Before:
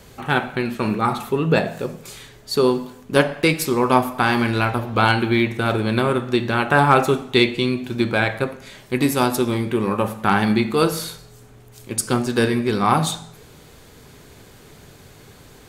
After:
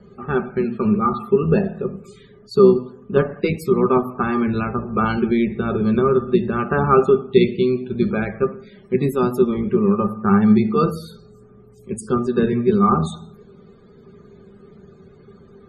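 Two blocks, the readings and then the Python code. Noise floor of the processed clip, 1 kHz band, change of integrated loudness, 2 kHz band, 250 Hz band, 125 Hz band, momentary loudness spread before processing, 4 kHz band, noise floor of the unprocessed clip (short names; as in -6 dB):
-48 dBFS, -3.0 dB, +1.0 dB, -8.5 dB, +3.0 dB, 0.0 dB, 10 LU, -12.0 dB, -46 dBFS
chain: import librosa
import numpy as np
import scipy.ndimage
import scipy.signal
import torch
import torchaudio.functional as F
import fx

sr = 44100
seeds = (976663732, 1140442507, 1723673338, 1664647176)

y = fx.octave_divider(x, sr, octaves=1, level_db=-5.0)
y = fx.spec_topn(y, sr, count=64)
y = fx.small_body(y, sr, hz=(200.0, 390.0, 1200.0), ring_ms=65, db=18)
y = F.gain(torch.from_numpy(y), -9.5).numpy()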